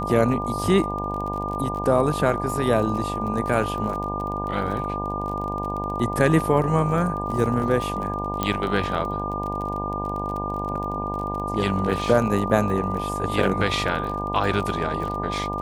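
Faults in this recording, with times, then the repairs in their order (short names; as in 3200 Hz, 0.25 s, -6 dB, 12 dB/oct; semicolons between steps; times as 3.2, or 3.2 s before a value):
buzz 50 Hz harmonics 20 -30 dBFS
crackle 30/s -30 dBFS
tone 1200 Hz -28 dBFS
8.43 pop -9 dBFS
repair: de-click; de-hum 50 Hz, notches 20; notch 1200 Hz, Q 30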